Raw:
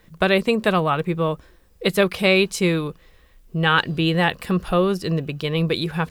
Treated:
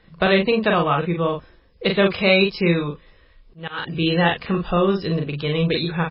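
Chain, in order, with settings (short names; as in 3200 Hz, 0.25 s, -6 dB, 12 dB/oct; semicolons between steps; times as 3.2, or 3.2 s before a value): doubler 41 ms -4 dB; 2.37–4.01 auto swell 0.372 s; MP3 16 kbps 12000 Hz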